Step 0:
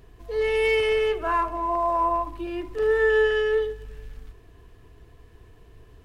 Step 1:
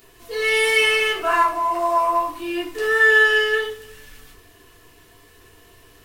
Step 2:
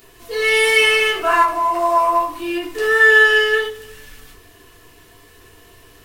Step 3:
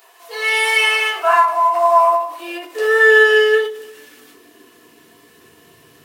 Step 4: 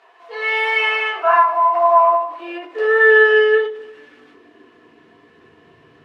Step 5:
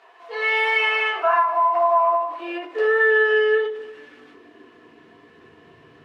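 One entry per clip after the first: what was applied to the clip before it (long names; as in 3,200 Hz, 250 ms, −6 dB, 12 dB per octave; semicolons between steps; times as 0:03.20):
spectral tilt +4 dB per octave; rectangular room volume 230 cubic metres, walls furnished, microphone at 3.3 metres
every ending faded ahead of time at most 140 dB per second; level +3.5 dB
high-pass filter sweep 770 Hz → 160 Hz, 0:01.89–0:05.73; every ending faded ahead of time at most 100 dB per second; level −1.5 dB
low-pass filter 2,300 Hz 12 dB per octave
downward compressor 2.5 to 1, threshold −17 dBFS, peak gain reduction 7 dB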